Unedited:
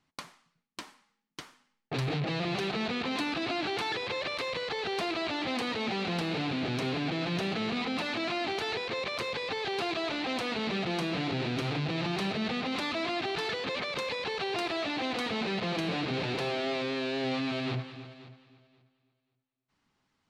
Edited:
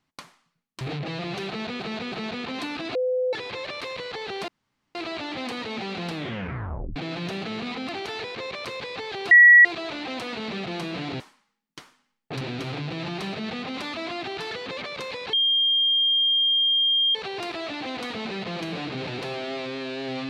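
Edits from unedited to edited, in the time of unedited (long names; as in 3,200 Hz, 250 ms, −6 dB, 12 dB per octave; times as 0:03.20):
0:00.81–0:02.02: move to 0:11.39
0:02.69–0:03.01: repeat, 3 plays
0:03.52–0:03.90: beep over 507 Hz −21 dBFS
0:05.05: splice in room tone 0.47 s
0:06.24: tape stop 0.82 s
0:07.99–0:08.42: remove
0:09.84: insert tone 1,930 Hz −8 dBFS 0.34 s
0:14.31: insert tone 3,210 Hz −18 dBFS 1.82 s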